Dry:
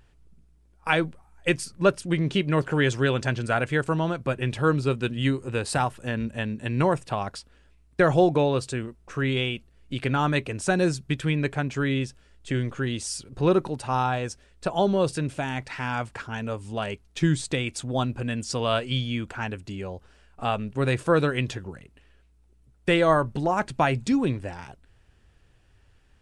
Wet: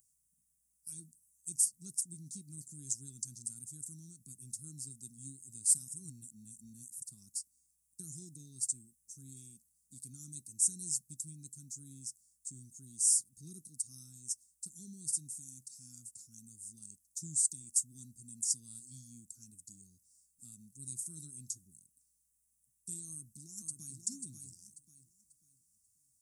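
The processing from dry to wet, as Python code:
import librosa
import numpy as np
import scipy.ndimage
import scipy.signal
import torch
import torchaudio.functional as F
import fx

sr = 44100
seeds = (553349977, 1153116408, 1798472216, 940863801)

y = fx.echo_throw(x, sr, start_s=23.07, length_s=0.96, ms=540, feedback_pct=30, wet_db=-5.0)
y = fx.edit(y, sr, fx.reverse_span(start_s=5.88, length_s=1.14), tone=tone)
y = scipy.signal.sosfilt(scipy.signal.cheby2(4, 50, [500.0, 3200.0], 'bandstop', fs=sr, output='sos'), y)
y = np.diff(y, prepend=0.0)
y = y * 10.0 ** (8.0 / 20.0)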